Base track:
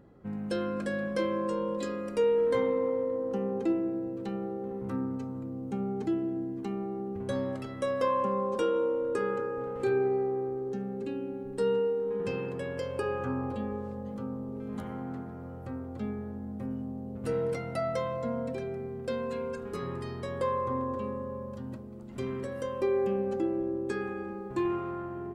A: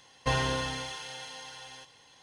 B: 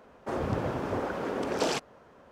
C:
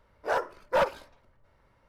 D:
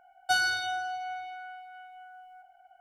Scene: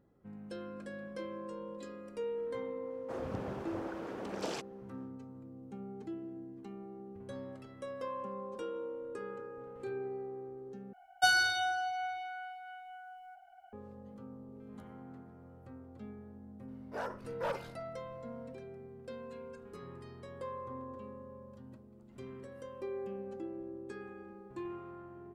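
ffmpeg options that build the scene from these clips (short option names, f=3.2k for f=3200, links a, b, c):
-filter_complex "[0:a]volume=-12.5dB[a];[3:a]alimiter=level_in=2.5dB:limit=-24dB:level=0:latency=1:release=30,volume=-2.5dB[b];[a]asplit=2[c][d];[c]atrim=end=10.934[e];[4:a]atrim=end=2.8,asetpts=PTS-STARTPTS,volume=-0.5dB[f];[d]atrim=start=13.726[g];[2:a]atrim=end=2.31,asetpts=PTS-STARTPTS,volume=-10.5dB,afade=t=in:d=0.1,afade=t=out:st=2.21:d=0.1,adelay=2820[h];[b]atrim=end=1.88,asetpts=PTS-STARTPTS,volume=-5dB,afade=t=in:d=0.004:c=hsin,afade=t=out:st=1.876:d=0.004:c=hsin,adelay=735588S[i];[e][f]acrossfade=d=0.004:c1=hsin:c2=hsin[j];[j][g]acrossfade=d=0.004:c1=hsin:c2=hsin[k];[k][h][i]amix=inputs=3:normalize=0"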